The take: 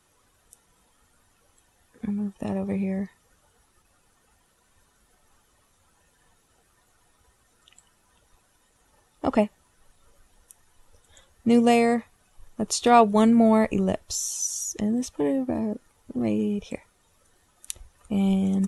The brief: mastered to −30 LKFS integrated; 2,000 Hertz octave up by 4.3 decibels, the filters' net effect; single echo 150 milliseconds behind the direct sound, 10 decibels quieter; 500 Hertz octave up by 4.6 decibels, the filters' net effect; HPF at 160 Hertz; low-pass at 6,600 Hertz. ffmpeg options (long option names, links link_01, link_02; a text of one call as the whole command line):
ffmpeg -i in.wav -af "highpass=160,lowpass=6600,equalizer=frequency=500:width_type=o:gain=5.5,equalizer=frequency=2000:width_type=o:gain=5,aecho=1:1:150:0.316,volume=-8.5dB" out.wav